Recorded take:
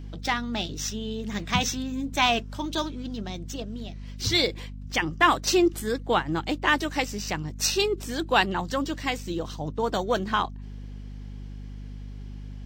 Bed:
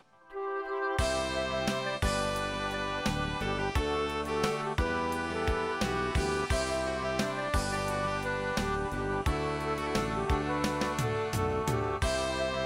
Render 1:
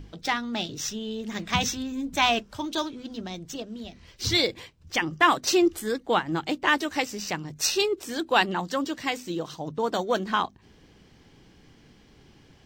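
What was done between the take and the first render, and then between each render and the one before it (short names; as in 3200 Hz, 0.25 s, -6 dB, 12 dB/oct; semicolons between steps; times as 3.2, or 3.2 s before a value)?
notches 50/100/150/200/250 Hz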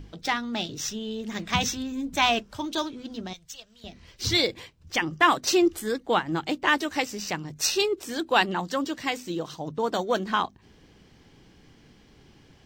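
3.33–3.84 passive tone stack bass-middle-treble 10-0-10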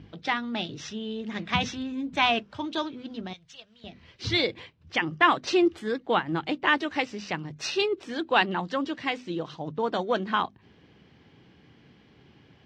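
Chebyshev band-pass 100–3100 Hz, order 2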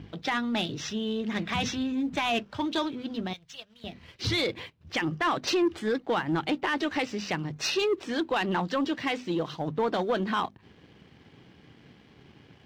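limiter -19 dBFS, peak gain reduction 12 dB; sample leveller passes 1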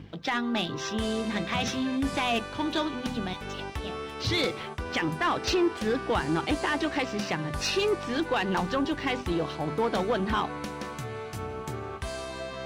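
add bed -5.5 dB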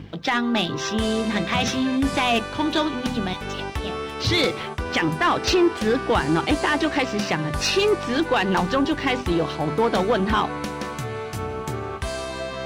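gain +6.5 dB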